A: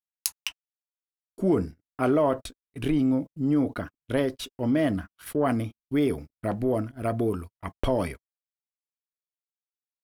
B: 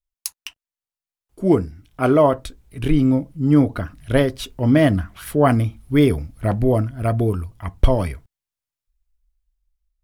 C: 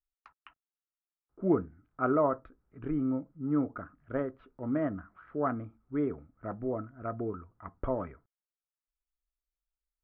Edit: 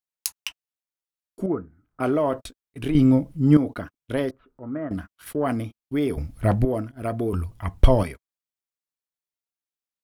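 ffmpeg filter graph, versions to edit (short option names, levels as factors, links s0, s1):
-filter_complex "[2:a]asplit=2[s0][s1];[1:a]asplit=3[s2][s3][s4];[0:a]asplit=6[s5][s6][s7][s8][s9][s10];[s5]atrim=end=1.462[s11];[s0]atrim=start=1.458:end=2.002[s12];[s6]atrim=start=1.998:end=2.952[s13];[s2]atrim=start=2.948:end=3.572[s14];[s7]atrim=start=3.568:end=4.312[s15];[s1]atrim=start=4.308:end=4.912[s16];[s8]atrim=start=4.908:end=6.172[s17];[s3]atrim=start=6.168:end=6.652[s18];[s9]atrim=start=6.648:end=7.332[s19];[s4]atrim=start=7.328:end=8.032[s20];[s10]atrim=start=8.028[s21];[s11][s12]acrossfade=d=0.004:c1=hsin:c2=hsin[s22];[s22][s13]acrossfade=d=0.004:c1=hsin:c2=hsin[s23];[s23][s14]acrossfade=d=0.004:c1=hsin:c2=hsin[s24];[s24][s15]acrossfade=d=0.004:c1=hsin:c2=hsin[s25];[s25][s16]acrossfade=d=0.004:c1=hsin:c2=hsin[s26];[s26][s17]acrossfade=d=0.004:c1=hsin:c2=hsin[s27];[s27][s18]acrossfade=d=0.004:c1=hsin:c2=hsin[s28];[s28][s19]acrossfade=d=0.004:c1=hsin:c2=hsin[s29];[s29][s20]acrossfade=d=0.004:c1=hsin:c2=hsin[s30];[s30][s21]acrossfade=d=0.004:c1=hsin:c2=hsin"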